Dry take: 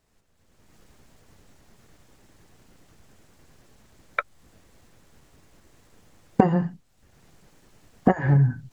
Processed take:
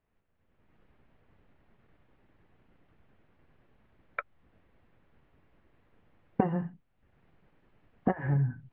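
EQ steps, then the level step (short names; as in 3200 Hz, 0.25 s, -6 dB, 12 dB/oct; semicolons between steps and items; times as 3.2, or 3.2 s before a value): LPF 2800 Hz 24 dB/oct; -9.0 dB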